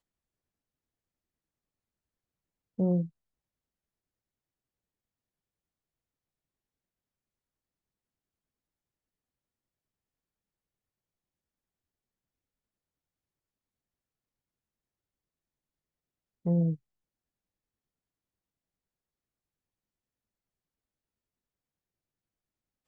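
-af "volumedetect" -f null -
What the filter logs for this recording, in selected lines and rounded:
mean_volume: -41.9 dB
max_volume: -18.1 dB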